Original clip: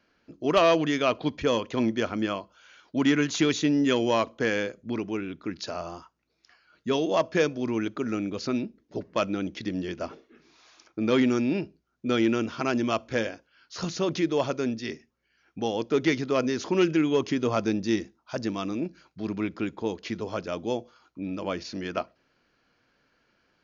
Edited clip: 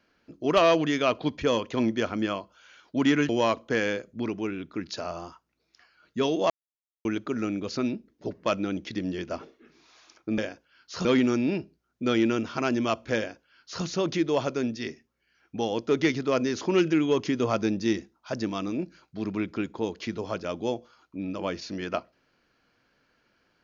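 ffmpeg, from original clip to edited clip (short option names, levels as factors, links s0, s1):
-filter_complex "[0:a]asplit=6[s0][s1][s2][s3][s4][s5];[s0]atrim=end=3.292[s6];[s1]atrim=start=3.988:end=7.2,asetpts=PTS-STARTPTS,afade=t=out:st=3.208:d=0.004:c=hsin[s7];[s2]atrim=start=7.2:end=7.75,asetpts=PTS-STARTPTS,volume=0[s8];[s3]atrim=start=7.75:end=11.082,asetpts=PTS-STARTPTS,afade=t=in:d=0.004:c=hsin[s9];[s4]atrim=start=13.198:end=13.872[s10];[s5]atrim=start=11.078[s11];[s7][s8][s9]concat=n=3:v=0:a=1[s12];[s6][s12]acrossfade=d=0.004:c1=hsin:c2=hsin[s13];[s13][s10]acrossfade=d=0.004:c1=hsin:c2=hsin[s14];[s14][s11]acrossfade=d=0.004:c1=hsin:c2=hsin"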